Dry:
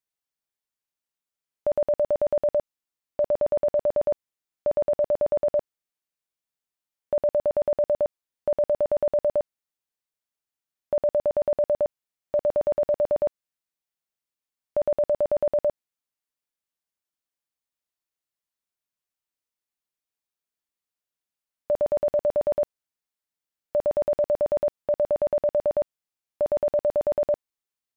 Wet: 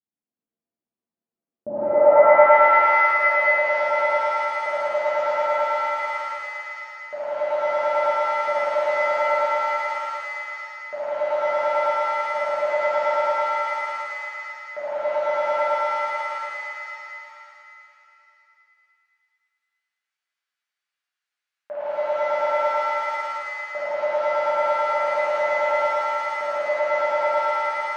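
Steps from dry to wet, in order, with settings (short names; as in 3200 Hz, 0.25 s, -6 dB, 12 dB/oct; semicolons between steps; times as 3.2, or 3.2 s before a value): vocal rider; band-pass sweep 230 Hz -> 1600 Hz, 1.72–2.42; shimmer reverb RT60 2.8 s, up +7 st, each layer -2 dB, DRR -10.5 dB; gain +4 dB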